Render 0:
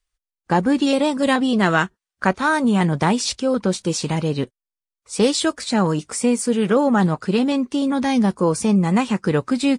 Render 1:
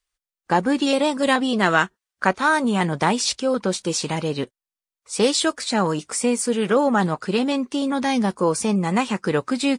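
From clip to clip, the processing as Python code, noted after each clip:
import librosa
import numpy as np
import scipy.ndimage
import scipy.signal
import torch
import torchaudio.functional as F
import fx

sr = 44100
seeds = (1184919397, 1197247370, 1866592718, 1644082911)

y = fx.low_shelf(x, sr, hz=230.0, db=-10.0)
y = F.gain(torch.from_numpy(y), 1.0).numpy()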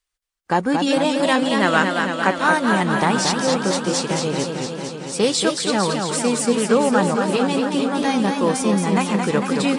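y = fx.echo_warbled(x, sr, ms=226, feedback_pct=74, rate_hz=2.8, cents=121, wet_db=-5.0)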